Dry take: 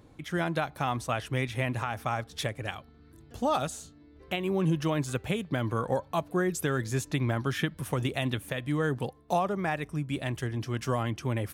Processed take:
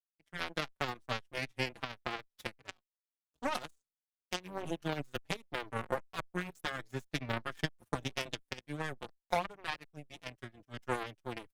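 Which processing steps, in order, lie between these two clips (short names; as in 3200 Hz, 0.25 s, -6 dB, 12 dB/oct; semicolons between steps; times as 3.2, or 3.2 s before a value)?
power-law curve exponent 3; endless flanger 4.8 ms -2.6 Hz; gain +4.5 dB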